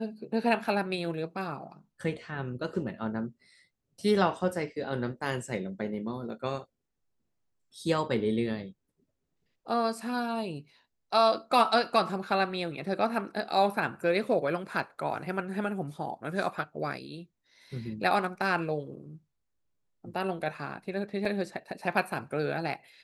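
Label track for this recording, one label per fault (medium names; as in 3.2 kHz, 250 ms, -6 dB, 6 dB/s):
21.250000	21.250000	dropout 3.1 ms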